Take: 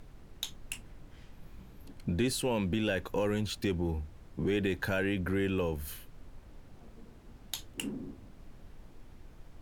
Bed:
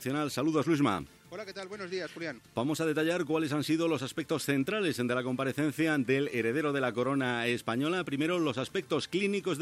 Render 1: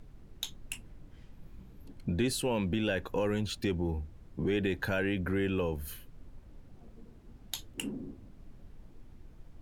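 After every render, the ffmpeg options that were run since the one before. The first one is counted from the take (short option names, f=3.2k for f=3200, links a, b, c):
-af "afftdn=nr=6:nf=-54"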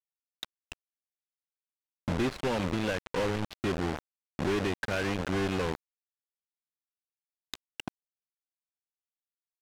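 -af "acrusher=bits=4:mix=0:aa=0.000001,adynamicsmooth=sensitivity=4:basefreq=1.4k"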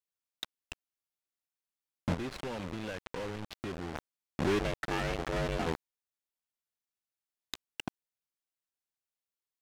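-filter_complex "[0:a]asettb=1/sr,asplit=3[a][b][c];[a]atrim=end=2.144[d];[b]atrim=start=2.14:end=3.95,asetpts=PTS-STARTPTS,afade=t=in:d=0.004:c=qsin,afade=t=out:st=1.806:d=0.004:c=qsin,acompressor=threshold=-35dB:ratio=6:attack=3.2:release=140:knee=1:detection=peak[e];[c]atrim=start=3.946[f];[d][e]acrossfade=d=0.004:c1=hsin:c2=qsin[g];[g][f]acrossfade=d=0.004:c1=qsin:c2=hsin,asplit=3[h][i][j];[h]afade=t=out:st=4.58:d=0.02[k];[i]aeval=exprs='val(0)*sin(2*PI*240*n/s)':c=same,afade=t=in:st=4.58:d=0.02,afade=t=out:st=5.65:d=0.02[l];[j]afade=t=in:st=5.65:d=0.02[m];[k][l][m]amix=inputs=3:normalize=0"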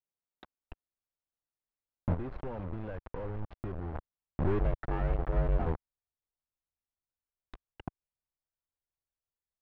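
-af "lowpass=1.1k,asubboost=boost=5:cutoff=100"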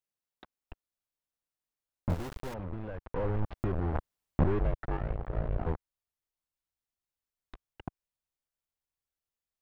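-filter_complex "[0:a]asettb=1/sr,asplit=3[a][b][c];[a]atrim=end=2.094[d];[b]atrim=start=2.09:end=2.54,asetpts=PTS-STARTPTS,afade=t=in:d=0.004:c=qsin,afade=t=out:st=0.446:d=0.004:c=qsin,aeval=exprs='val(0)*gte(abs(val(0)),0.0133)':c=same[e];[c]atrim=start=2.536[f];[d][e]acrossfade=d=0.004:c1=hsin:c2=qsin[g];[g][f]acrossfade=d=0.004:c1=qsin:c2=hsin,asplit=3[h][i][j];[h]afade=t=out:st=3.14:d=0.02[k];[i]acontrast=82,afade=t=in:st=3.14:d=0.02,afade=t=out:st=4.43:d=0.02[l];[j]afade=t=in:st=4.43:d=0.02[m];[k][l][m]amix=inputs=3:normalize=0,asplit=3[n][o][p];[n]afade=t=out:st=4.96:d=0.02[q];[o]tremolo=f=57:d=0.947,afade=t=in:st=4.96:d=0.02,afade=t=out:st=5.65:d=0.02[r];[p]afade=t=in:st=5.65:d=0.02[s];[q][r][s]amix=inputs=3:normalize=0"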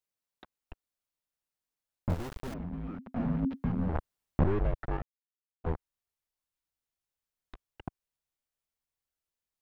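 -filter_complex "[0:a]asettb=1/sr,asplit=3[a][b][c];[a]atrim=end=2.474[d];[b]atrim=start=2.47:end=3.89,asetpts=PTS-STARTPTS,afade=t=in:d=0.004:c=qsin,afade=t=out:st=1.416:d=0.004:c=qsin,afreqshift=-270[e];[c]atrim=start=3.886[f];[d][e]acrossfade=d=0.004:c1=hsin:c2=qsin[g];[g][f]acrossfade=d=0.004:c1=qsin:c2=hsin,asplit=3[h][i][j];[h]atrim=end=5.02,asetpts=PTS-STARTPTS,afade=t=out:st=5.016:d=0.004:c=hsin[k];[i]atrim=start=5.02:end=5.64,asetpts=PTS-STARTPTS,volume=0[l];[j]atrim=start=5.64,asetpts=PTS-STARTPTS,afade=t=in:d=0.004:c=hsin[m];[k][l][m]concat=n=3:v=0:a=1"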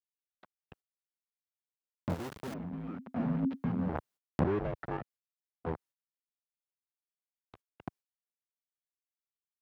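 -af "agate=range=-26dB:threshold=-53dB:ratio=16:detection=peak,highpass=130"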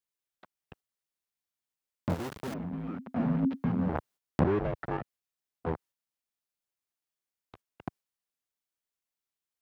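-af "volume=3.5dB"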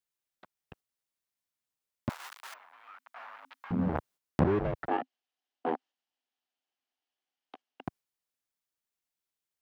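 -filter_complex "[0:a]asettb=1/sr,asplit=3[a][b][c];[a]atrim=end=2.094[d];[b]atrim=start=2.09:end=3.71,asetpts=PTS-STARTPTS,afade=t=in:d=0.004:c=qsin,afade=t=out:st=1.616:d=0.004:c=qsin,highpass=f=1k:w=0.5412,highpass=f=1k:w=1.3066[e];[c]atrim=start=3.706[f];[d][e]acrossfade=d=0.004:c1=hsin:c2=qsin[g];[g][f]acrossfade=d=0.004:c1=qsin:c2=hsin,asettb=1/sr,asplit=3[h][i][j];[h]atrim=end=4.884[k];[i]atrim=start=4.88:end=7.84,asetpts=PTS-STARTPTS,afade=t=in:d=0.004:c=qsin,afade=t=out:st=2.956:d=0.004:c=qsin,highpass=f=250:w=0.5412,highpass=f=250:w=1.3066,equalizer=f=260:t=q:w=4:g=9,equalizer=f=760:t=q:w=4:g=10,equalizer=f=1.7k:t=q:w=4:g=3,equalizer=f=3k:t=q:w=4:g=8,lowpass=f=5.9k:w=0.5412,lowpass=f=5.9k:w=1.3066[l];[j]atrim=start=7.836[m];[k][l]acrossfade=d=0.004:c1=hsin:c2=qsin[n];[n][m]acrossfade=d=0.004:c1=qsin:c2=hsin"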